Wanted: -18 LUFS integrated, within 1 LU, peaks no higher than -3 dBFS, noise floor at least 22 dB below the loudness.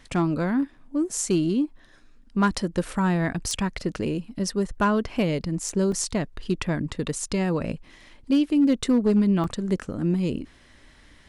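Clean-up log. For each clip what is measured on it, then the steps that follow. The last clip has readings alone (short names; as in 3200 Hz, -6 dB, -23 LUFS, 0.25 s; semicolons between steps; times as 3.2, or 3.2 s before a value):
clipped 0.3%; flat tops at -14.0 dBFS; dropouts 2; longest dropout 2.8 ms; loudness -25.0 LUFS; peak -14.0 dBFS; loudness target -18.0 LUFS
-> clip repair -14 dBFS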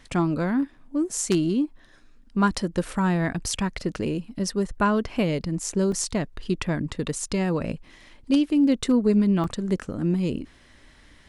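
clipped 0.0%; dropouts 2; longest dropout 2.8 ms
-> interpolate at 5.92/9.44, 2.8 ms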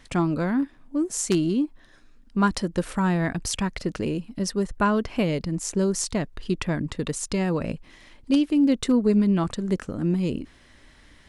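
dropouts 0; loudness -25.0 LUFS; peak -5.0 dBFS; loudness target -18.0 LUFS
-> gain +7 dB; limiter -3 dBFS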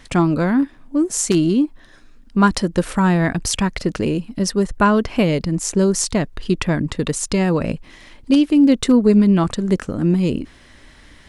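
loudness -18.0 LUFS; peak -3.0 dBFS; noise floor -47 dBFS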